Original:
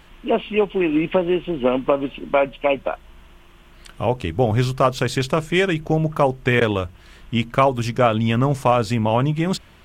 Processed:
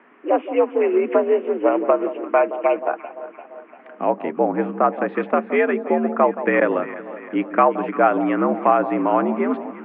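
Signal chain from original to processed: 4.37–5.08 air absorption 360 m; echo with dull and thin repeats by turns 0.172 s, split 1000 Hz, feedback 74%, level -12 dB; mistuned SSB +69 Hz 160–2100 Hz; gain +1 dB

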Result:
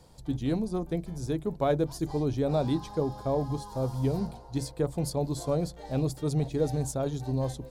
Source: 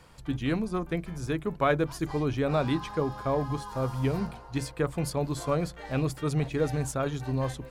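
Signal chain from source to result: band shelf 1800 Hz -11.5 dB

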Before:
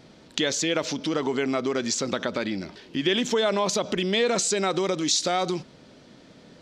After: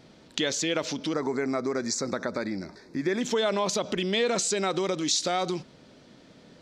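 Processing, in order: 1.13–3.21 Butterworth band-stop 3000 Hz, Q 1.6; gain -2.5 dB

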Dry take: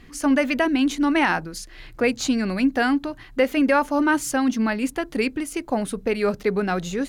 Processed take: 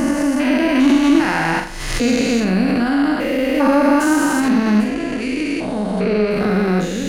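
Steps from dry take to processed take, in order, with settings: stepped spectrum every 0.4 s; 4.84–6.31 LPF 6200 Hz 12 dB/oct; on a send: flutter echo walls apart 7.3 m, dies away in 0.42 s; on the sum: backwards sustainer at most 48 dB/s; gain +9 dB

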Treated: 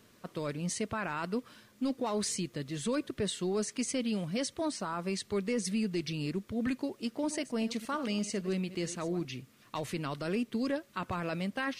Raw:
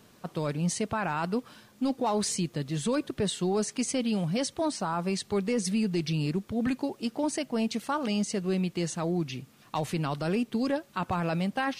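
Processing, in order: 7.07–9.25 reverse delay 0.112 s, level -14 dB; thirty-one-band EQ 160 Hz -6 dB, 800 Hz -8 dB, 2000 Hz +3 dB; gain -3.5 dB

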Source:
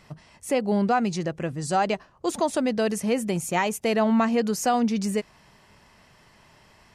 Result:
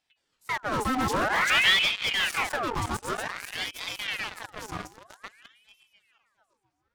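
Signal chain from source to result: regenerating reverse delay 0.337 s, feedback 58%, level -2 dB; Doppler pass-by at 1.6, 15 m/s, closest 1.8 m; HPF 210 Hz 12 dB/oct; treble ducked by the level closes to 2800 Hz, closed at -24 dBFS; in parallel at -11.5 dB: fuzz box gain 45 dB, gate -47 dBFS; on the sum: ring modulator with a swept carrier 1700 Hz, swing 70%, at 0.52 Hz; gain +1.5 dB

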